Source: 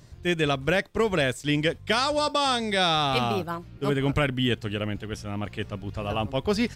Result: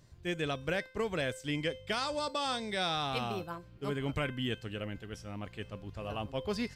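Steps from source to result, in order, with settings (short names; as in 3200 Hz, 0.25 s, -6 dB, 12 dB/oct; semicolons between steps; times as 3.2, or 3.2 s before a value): resonator 520 Hz, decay 0.48 s, mix 70%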